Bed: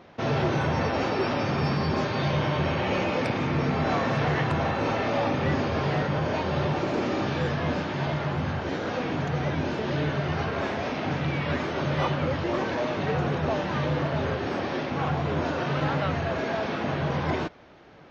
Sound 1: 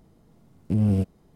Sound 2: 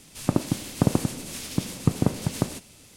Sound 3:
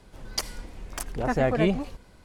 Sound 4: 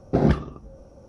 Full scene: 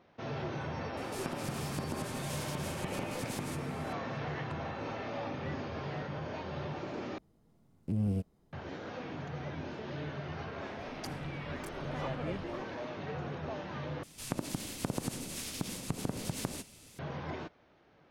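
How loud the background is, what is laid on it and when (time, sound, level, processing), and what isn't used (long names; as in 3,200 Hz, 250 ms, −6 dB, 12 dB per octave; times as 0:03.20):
bed −13 dB
0:00.97: mix in 2 −7.5 dB + downward compressor, threshold −27 dBFS
0:07.18: overwrite with 1 −10 dB
0:10.66: mix in 3 −17.5 dB
0:14.03: overwrite with 2 −4.5 dB + downward compressor, threshold −24 dBFS
not used: 4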